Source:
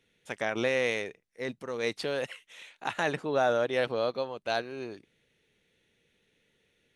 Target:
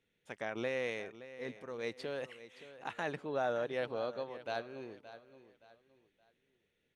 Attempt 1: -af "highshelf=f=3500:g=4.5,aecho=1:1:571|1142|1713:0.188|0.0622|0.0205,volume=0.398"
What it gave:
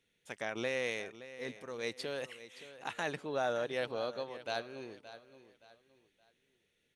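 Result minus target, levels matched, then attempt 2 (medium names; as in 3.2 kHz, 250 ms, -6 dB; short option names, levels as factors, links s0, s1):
8 kHz band +7.5 dB
-af "highshelf=f=3500:g=-6.5,aecho=1:1:571|1142|1713:0.188|0.0622|0.0205,volume=0.398"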